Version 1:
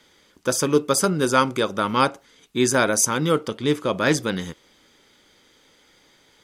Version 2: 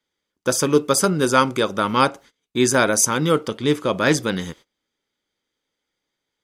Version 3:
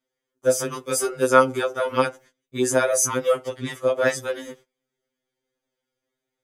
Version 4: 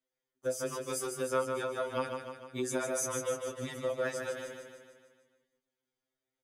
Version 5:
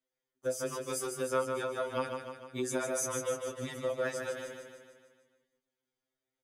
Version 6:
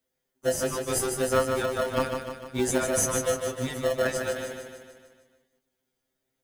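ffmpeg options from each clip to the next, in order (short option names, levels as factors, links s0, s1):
-af "agate=range=0.0562:threshold=0.00631:ratio=16:detection=peak,volume=1.26"
-filter_complex "[0:a]equalizer=f=500:t=o:w=1:g=6,equalizer=f=1000:t=o:w=1:g=-4,equalizer=f=4000:t=o:w=1:g=-8,acrossover=split=480[s0][s1];[s0]acompressor=threshold=0.0316:ratio=4[s2];[s2][s1]amix=inputs=2:normalize=0,afftfilt=real='re*2.45*eq(mod(b,6),0)':imag='im*2.45*eq(mod(b,6),0)':win_size=2048:overlap=0.75"
-af "acompressor=threshold=0.0447:ratio=2,flanger=delay=6:depth=4:regen=-65:speed=0.32:shape=triangular,aecho=1:1:151|302|453|604|755|906|1057:0.501|0.276|0.152|0.0834|0.0459|0.0252|0.0139,volume=0.631"
-af anull
-filter_complex "[0:a]crystalizer=i=0.5:c=0,asplit=2[s0][s1];[s1]acrusher=samples=37:mix=1:aa=0.000001,volume=0.447[s2];[s0][s2]amix=inputs=2:normalize=0,volume=2"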